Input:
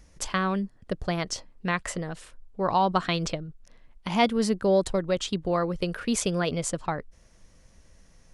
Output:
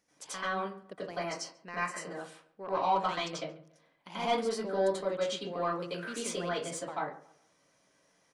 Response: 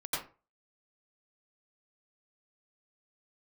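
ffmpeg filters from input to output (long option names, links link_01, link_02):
-filter_complex "[0:a]highpass=270,asoftclip=type=tanh:threshold=-15dB,asettb=1/sr,asplit=3[link_01][link_02][link_03];[link_01]atrim=end=1.104[link_04];[link_02]atrim=start=1.1:end=2.08,asetpts=PTS-STARTPTS,afade=type=in:duration=0.004:curve=qsin,afade=type=out:start_time=0.976:duration=0.004:curve=qsin,asuperstop=centerf=3500:order=4:qfactor=4.5[link_05];[link_03]atrim=start=2.076[link_06];[link_04][link_05]acrossfade=duration=0.004:curve1=hsin:curve2=qsin[link_07];[link_07][link_06]acrossfade=duration=0.004:curve1=qsin:curve2=hsin,asplit=2[link_08][link_09];[link_09]adelay=140,lowpass=frequency=2200:poles=1,volume=-19dB,asplit=2[link_10][link_11];[link_11]adelay=140,lowpass=frequency=2200:poles=1,volume=0.35,asplit=2[link_12][link_13];[link_13]adelay=140,lowpass=frequency=2200:poles=1,volume=0.35[link_14];[link_08][link_10][link_12][link_14]amix=inputs=4:normalize=0[link_15];[1:a]atrim=start_sample=2205[link_16];[link_15][link_16]afir=irnorm=-1:irlink=0,volume=-9dB"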